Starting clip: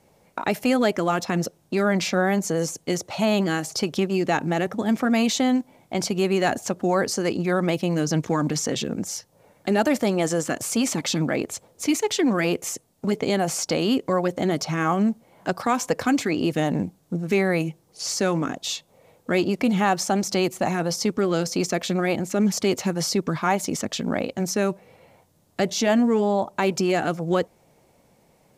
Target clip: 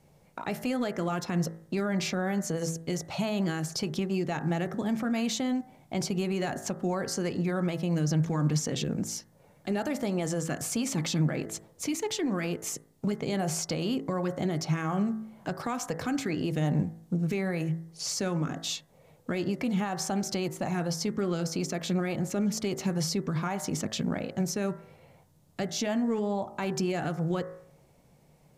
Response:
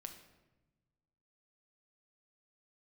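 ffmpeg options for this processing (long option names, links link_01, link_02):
-af "lowshelf=frequency=78:gain=10.5,bandreject=frequency=54.71:width_type=h:width=4,bandreject=frequency=109.42:width_type=h:width=4,bandreject=frequency=164.13:width_type=h:width=4,bandreject=frequency=218.84:width_type=h:width=4,bandreject=frequency=273.55:width_type=h:width=4,bandreject=frequency=328.26:width_type=h:width=4,bandreject=frequency=382.97:width_type=h:width=4,bandreject=frequency=437.68:width_type=h:width=4,bandreject=frequency=492.39:width_type=h:width=4,bandreject=frequency=547.1:width_type=h:width=4,bandreject=frequency=601.81:width_type=h:width=4,bandreject=frequency=656.52:width_type=h:width=4,bandreject=frequency=711.23:width_type=h:width=4,bandreject=frequency=765.94:width_type=h:width=4,bandreject=frequency=820.65:width_type=h:width=4,bandreject=frequency=875.36:width_type=h:width=4,bandreject=frequency=930.07:width_type=h:width=4,bandreject=frequency=984.78:width_type=h:width=4,bandreject=frequency=1039.49:width_type=h:width=4,bandreject=frequency=1094.2:width_type=h:width=4,bandreject=frequency=1148.91:width_type=h:width=4,bandreject=frequency=1203.62:width_type=h:width=4,bandreject=frequency=1258.33:width_type=h:width=4,bandreject=frequency=1313.04:width_type=h:width=4,bandreject=frequency=1367.75:width_type=h:width=4,bandreject=frequency=1422.46:width_type=h:width=4,bandreject=frequency=1477.17:width_type=h:width=4,bandreject=frequency=1531.88:width_type=h:width=4,bandreject=frequency=1586.59:width_type=h:width=4,bandreject=frequency=1641.3:width_type=h:width=4,bandreject=frequency=1696.01:width_type=h:width=4,bandreject=frequency=1750.72:width_type=h:width=4,bandreject=frequency=1805.43:width_type=h:width=4,bandreject=frequency=1860.14:width_type=h:width=4,bandreject=frequency=1914.85:width_type=h:width=4,bandreject=frequency=1969.56:width_type=h:width=4,bandreject=frequency=2024.27:width_type=h:width=4,bandreject=frequency=2078.98:width_type=h:width=4,alimiter=limit=-17.5dB:level=0:latency=1:release=160,equalizer=frequency=150:width_type=o:width=0.36:gain=8.5,volume=-4.5dB"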